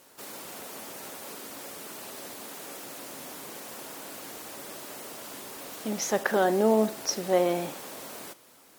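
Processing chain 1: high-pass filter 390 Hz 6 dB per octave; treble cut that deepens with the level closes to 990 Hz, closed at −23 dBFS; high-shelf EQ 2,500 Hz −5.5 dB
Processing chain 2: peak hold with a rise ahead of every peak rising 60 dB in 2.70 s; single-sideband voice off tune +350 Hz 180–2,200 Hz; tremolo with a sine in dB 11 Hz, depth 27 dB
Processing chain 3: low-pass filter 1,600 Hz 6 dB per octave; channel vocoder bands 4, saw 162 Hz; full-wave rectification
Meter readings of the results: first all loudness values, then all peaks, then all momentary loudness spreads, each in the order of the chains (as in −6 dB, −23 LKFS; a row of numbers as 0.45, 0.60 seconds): −35.5, −29.5, −33.5 LKFS; −15.0, −11.5, −14.5 dBFS; 17, 21, 22 LU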